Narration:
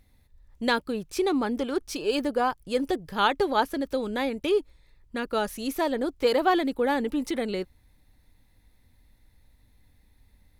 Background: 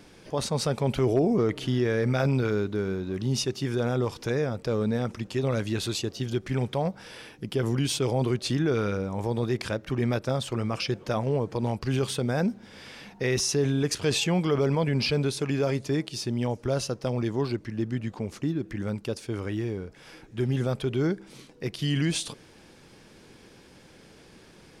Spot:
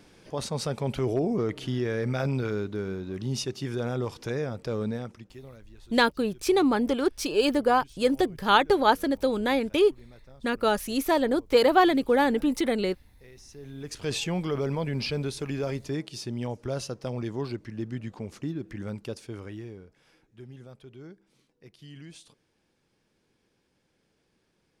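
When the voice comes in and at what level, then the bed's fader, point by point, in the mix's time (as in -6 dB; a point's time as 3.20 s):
5.30 s, +3.0 dB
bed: 4.88 s -3.5 dB
5.68 s -26 dB
13.42 s -26 dB
14.10 s -4.5 dB
19.11 s -4.5 dB
20.58 s -20 dB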